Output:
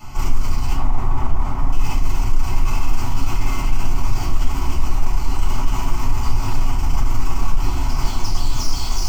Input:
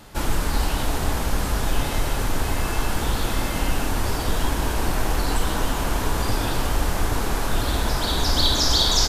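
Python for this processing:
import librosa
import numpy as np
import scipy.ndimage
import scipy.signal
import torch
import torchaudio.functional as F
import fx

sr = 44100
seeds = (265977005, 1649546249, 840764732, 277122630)

p1 = fx.high_shelf_res(x, sr, hz=1700.0, db=-12.5, q=1.5, at=(0.75, 1.72))
p2 = fx.over_compress(p1, sr, threshold_db=-24.0, ratio=-1.0)
p3 = p1 + (p2 * 10.0 ** (1.5 / 20.0))
p4 = 10.0 ** (-20.0 / 20.0) * np.tanh(p3 / 10.0 ** (-20.0 / 20.0))
p5 = fx.fixed_phaser(p4, sr, hz=2500.0, stages=8)
p6 = np.clip(10.0 ** (22.5 / 20.0) * p5, -1.0, 1.0) / 10.0 ** (22.5 / 20.0)
p7 = fx.room_shoebox(p6, sr, seeds[0], volume_m3=120.0, walls='furnished', distance_m=3.4)
y = p7 * 10.0 ** (-7.5 / 20.0)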